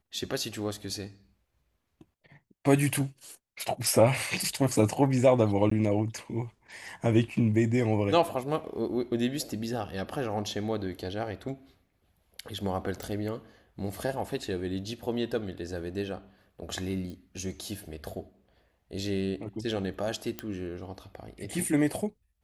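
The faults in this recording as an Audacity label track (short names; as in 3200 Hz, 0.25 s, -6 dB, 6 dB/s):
5.700000	5.710000	gap 14 ms
13.030000	13.030000	pop
17.100000	17.100000	pop -31 dBFS
20.390000	20.390000	pop -16 dBFS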